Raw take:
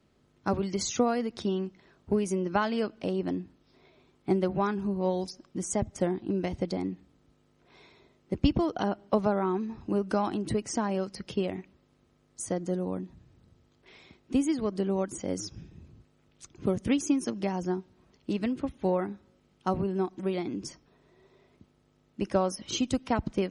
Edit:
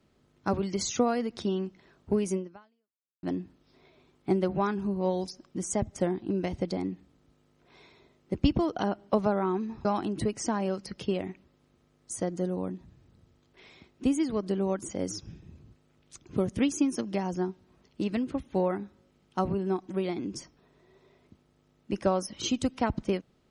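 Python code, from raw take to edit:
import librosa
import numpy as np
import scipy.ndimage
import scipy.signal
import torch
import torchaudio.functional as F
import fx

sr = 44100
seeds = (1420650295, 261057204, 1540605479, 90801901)

y = fx.edit(x, sr, fx.fade_out_span(start_s=2.36, length_s=0.87, curve='exp'),
    fx.cut(start_s=9.85, length_s=0.29), tone=tone)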